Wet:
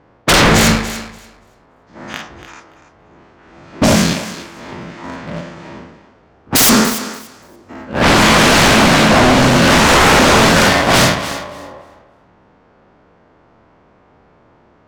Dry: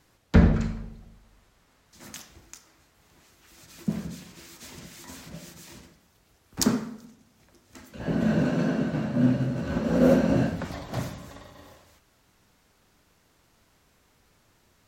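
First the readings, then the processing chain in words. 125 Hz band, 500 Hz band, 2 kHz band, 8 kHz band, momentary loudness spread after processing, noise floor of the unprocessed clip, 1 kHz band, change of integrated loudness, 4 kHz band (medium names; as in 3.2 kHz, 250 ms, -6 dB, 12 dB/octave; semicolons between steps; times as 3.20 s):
+10.0 dB, +15.0 dB, +25.5 dB, +22.0 dB, 20 LU, -65 dBFS, +25.5 dB, +15.0 dB, +27.0 dB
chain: every event in the spectrogram widened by 120 ms; level-controlled noise filter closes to 760 Hz, open at -17.5 dBFS; low-pass 7.3 kHz 12 dB/octave; tilt EQ +3 dB/octave; band-stop 3.9 kHz, Q 30; waveshaping leveller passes 2; compression, threshold -17 dBFS, peak gain reduction 11 dB; sine folder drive 17 dB, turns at -5.5 dBFS; thinning echo 288 ms, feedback 16%, high-pass 390 Hz, level -12.5 dB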